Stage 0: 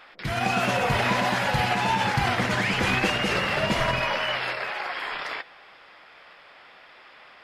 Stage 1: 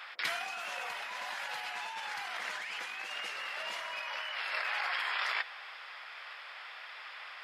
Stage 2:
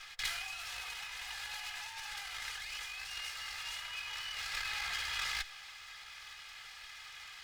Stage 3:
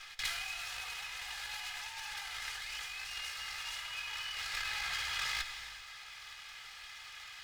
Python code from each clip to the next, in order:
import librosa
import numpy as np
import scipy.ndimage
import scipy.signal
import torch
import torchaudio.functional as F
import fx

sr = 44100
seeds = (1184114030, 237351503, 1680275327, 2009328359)

y1 = scipy.signal.sosfilt(scipy.signal.butter(2, 1000.0, 'highpass', fs=sr, output='sos'), x)
y1 = fx.over_compress(y1, sr, threshold_db=-36.0, ratio=-1.0)
y1 = y1 * 10.0 ** (-2.5 / 20.0)
y2 = fx.lower_of_two(y1, sr, delay_ms=2.4)
y2 = fx.tone_stack(y2, sr, knobs='10-0-10')
y2 = y2 * 10.0 ** (2.5 / 20.0)
y3 = fx.rev_gated(y2, sr, seeds[0], gate_ms=410, shape='flat', drr_db=7.5)